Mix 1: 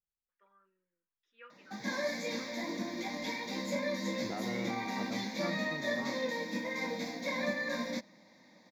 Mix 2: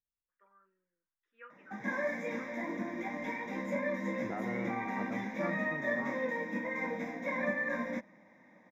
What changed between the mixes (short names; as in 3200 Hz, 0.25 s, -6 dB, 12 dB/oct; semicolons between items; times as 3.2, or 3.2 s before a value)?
background: add Butterworth band-stop 4400 Hz, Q 3.8; master: add resonant high shelf 2700 Hz -12 dB, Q 1.5